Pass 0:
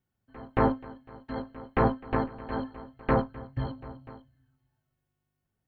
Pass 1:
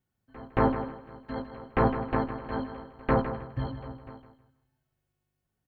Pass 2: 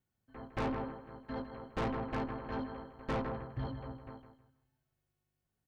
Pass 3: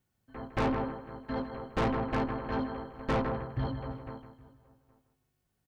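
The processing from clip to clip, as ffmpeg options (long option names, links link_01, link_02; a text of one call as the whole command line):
ffmpeg -i in.wav -af "aecho=1:1:158|316|474:0.316|0.0822|0.0214" out.wav
ffmpeg -i in.wav -af "asoftclip=type=tanh:threshold=-27.5dB,volume=-3.5dB" out.wav
ffmpeg -i in.wav -filter_complex "[0:a]asplit=2[link_01][link_02];[link_02]adelay=816.3,volume=-23dB,highshelf=frequency=4000:gain=-18.4[link_03];[link_01][link_03]amix=inputs=2:normalize=0,volume=6dB" out.wav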